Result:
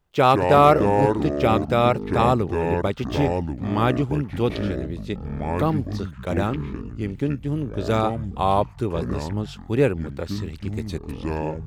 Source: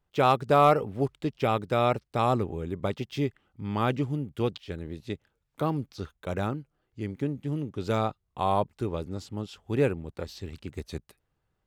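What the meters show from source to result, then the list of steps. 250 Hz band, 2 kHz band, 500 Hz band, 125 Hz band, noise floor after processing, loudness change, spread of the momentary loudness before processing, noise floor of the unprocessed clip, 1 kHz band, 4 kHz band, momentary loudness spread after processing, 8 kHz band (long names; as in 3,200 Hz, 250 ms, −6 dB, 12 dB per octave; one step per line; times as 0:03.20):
+8.0 dB, +7.0 dB, +7.0 dB, +7.0 dB, −40 dBFS, +6.5 dB, 15 LU, −78 dBFS, +6.0 dB, +5.5 dB, 12 LU, can't be measured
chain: delay with pitch and tempo change per echo 90 ms, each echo −6 semitones, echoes 3, each echo −6 dB
level +5.5 dB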